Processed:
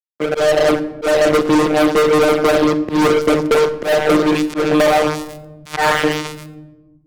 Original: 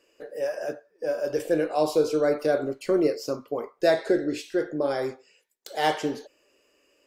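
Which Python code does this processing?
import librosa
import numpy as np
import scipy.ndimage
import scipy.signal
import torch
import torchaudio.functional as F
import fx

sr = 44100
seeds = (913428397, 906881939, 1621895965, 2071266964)

y = fx.block_float(x, sr, bits=3, at=(4.88, 5.78))
y = fx.rider(y, sr, range_db=4, speed_s=0.5)
y = fx.echo_wet_highpass(y, sr, ms=136, feedback_pct=64, hz=2800.0, wet_db=-5.0)
y = fx.filter_sweep_bandpass(y, sr, from_hz=290.0, to_hz=1600.0, start_s=2.73, end_s=6.19, q=1.2)
y = fx.robotise(y, sr, hz=152.0)
y = fx.filter_lfo_notch(y, sr, shape='saw_up', hz=0.71, low_hz=460.0, high_hz=6900.0, q=1.7)
y = fx.fuzz(y, sr, gain_db=39.0, gate_db=-47.0)
y = fx.room_shoebox(y, sr, seeds[0], volume_m3=2100.0, walls='furnished', distance_m=0.86)
y = fx.auto_swell(y, sr, attack_ms=178.0)
y = fx.band_squash(y, sr, depth_pct=70)
y = y * 10.0 ** (4.5 / 20.0)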